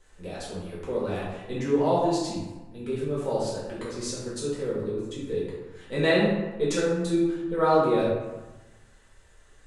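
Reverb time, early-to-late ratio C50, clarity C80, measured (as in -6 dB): 1.2 s, 0.5 dB, 3.0 dB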